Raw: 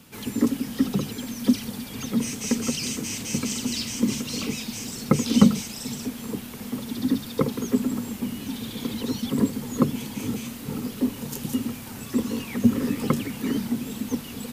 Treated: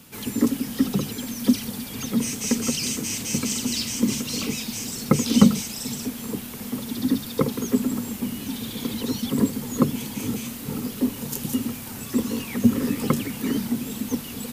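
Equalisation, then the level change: treble shelf 7 kHz +5.5 dB; +1.0 dB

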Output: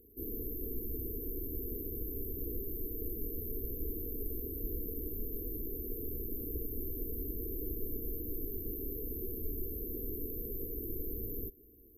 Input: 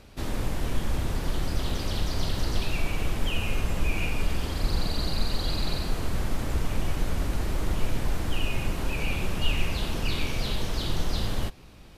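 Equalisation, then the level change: brick-wall FIR band-stop 490–12000 Hz; tilt EQ +3 dB/octave; static phaser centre 390 Hz, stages 4; +1.0 dB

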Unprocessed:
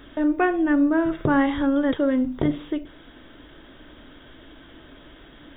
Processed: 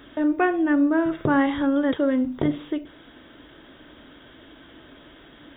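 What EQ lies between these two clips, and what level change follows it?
high-pass 93 Hz 6 dB/octave; 0.0 dB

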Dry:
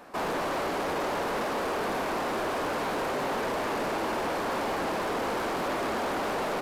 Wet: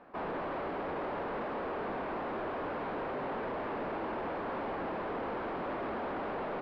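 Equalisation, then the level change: distance through air 430 m; treble shelf 11 kHz -9.5 dB; -5.0 dB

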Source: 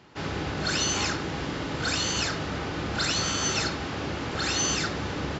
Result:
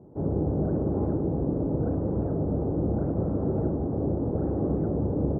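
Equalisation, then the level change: inverse Chebyshev low-pass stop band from 3.5 kHz, stop band 80 dB; +6.5 dB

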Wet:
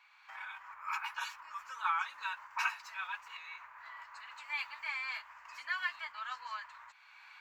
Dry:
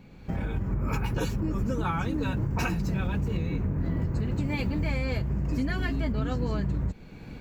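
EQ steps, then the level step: elliptic high-pass 1 kHz, stop band 60 dB; low-pass 2.3 kHz 6 dB/octave; +3.0 dB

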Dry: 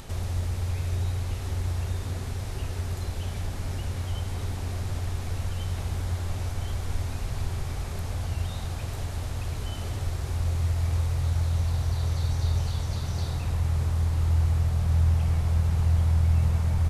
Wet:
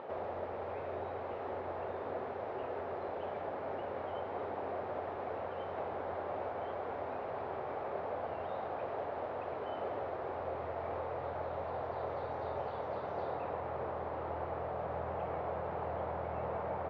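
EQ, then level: ladder band-pass 680 Hz, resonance 35%; distance through air 220 m; +16.5 dB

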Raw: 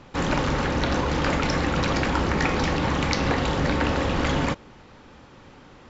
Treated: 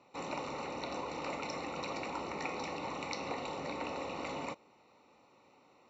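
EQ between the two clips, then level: boxcar filter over 27 samples; differentiator; bass shelf 88 Hz -5.5 dB; +11.0 dB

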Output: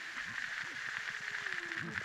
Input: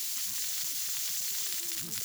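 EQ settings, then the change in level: resonant low-pass 1.7 kHz, resonance Q 5.8; +2.0 dB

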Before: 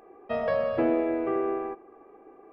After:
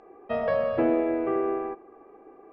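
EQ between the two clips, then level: distance through air 110 m; +1.5 dB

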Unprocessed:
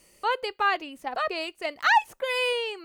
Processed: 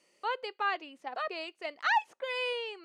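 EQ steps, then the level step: band-pass 270–5900 Hz; -7.0 dB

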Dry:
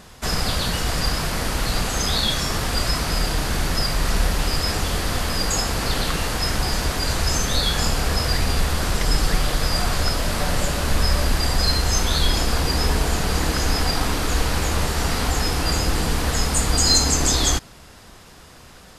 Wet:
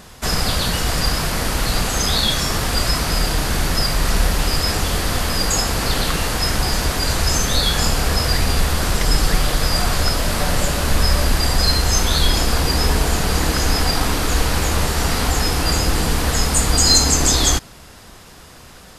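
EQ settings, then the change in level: treble shelf 11 kHz +4.5 dB; +3.0 dB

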